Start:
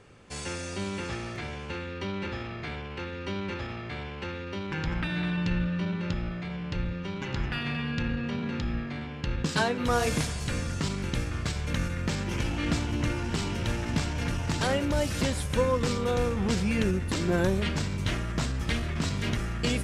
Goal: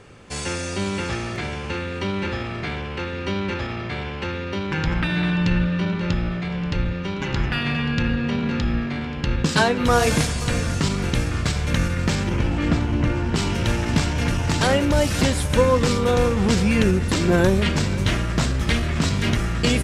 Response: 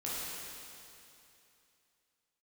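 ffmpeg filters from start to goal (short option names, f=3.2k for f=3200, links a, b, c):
-filter_complex "[0:a]asettb=1/sr,asplit=3[a][b][c];[a]atrim=end=12.294[d];[b]atrim=start=12.29:end=13.36,asetpts=PTS-STARTPTS,afade=t=in:d=0.004:c=qsin,afade=t=out:st=1.066:d=0.004:c=qsin,lowpass=f=1.6k:p=1[e];[c]atrim=start=13.356[f];[d][e]acrossfade=d=0.004:c1=hsin:c2=qsin[g];[g][f]acrossfade=d=0.004:c1=qsin:c2=hsin,aecho=1:1:531|1062|1593|2124|2655:0.141|0.0791|0.0443|0.0248|0.0139,volume=8dB"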